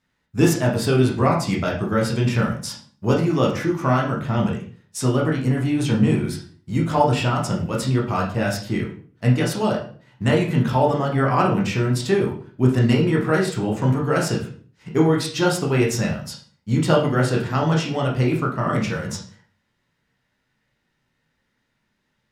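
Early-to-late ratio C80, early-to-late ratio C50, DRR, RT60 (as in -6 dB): 11.5 dB, 7.0 dB, -2.5 dB, 0.45 s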